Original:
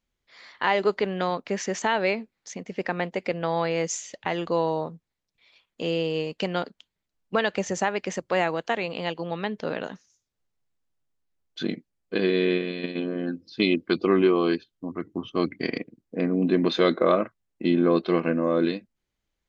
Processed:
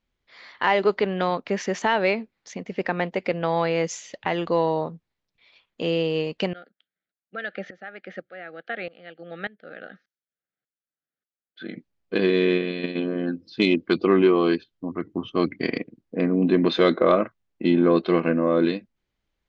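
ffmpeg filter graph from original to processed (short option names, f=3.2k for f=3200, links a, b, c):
-filter_complex "[0:a]asettb=1/sr,asplit=3[a][b][c];[a]atrim=end=6.534[d];[b]atrim=start=6.53:end=11.76,asetpts=PTS-STARTPTS,afade=t=in:d=0.004:c=qsin,afade=t=out:st=5.226:d=0.004:c=qsin,asuperstop=centerf=990:order=8:qfactor=2.1,highpass=250,equalizer=f=270:t=q:w=4:g=-5,equalizer=f=410:t=q:w=4:g=-7,equalizer=f=660:t=q:w=4:g=-5,equalizer=f=1.1k:t=q:w=4:g=5,equalizer=f=1.6k:t=q:w=4:g=4,equalizer=f=2.7k:t=q:w=4:g=-8,lowpass=f=3.5k:w=0.5412,lowpass=f=3.5k:w=1.3066,aeval=exprs='val(0)*pow(10,-19*if(lt(mod(-1.7*n/s,1),2*abs(-1.7)/1000),1-mod(-1.7*n/s,1)/(2*abs(-1.7)/1000),(mod(-1.7*n/s,1)-2*abs(-1.7)/1000)/(1-2*abs(-1.7)/1000))/20)':c=same[e];[c]atrim=start=11.756[f];[d][e]acrossfade=d=0.004:c1=hsin:c2=qsin[g];[g][f]acrossfade=d=0.004:c1=qsin:c2=hsin,lowpass=4.7k,acontrast=32,volume=-2.5dB"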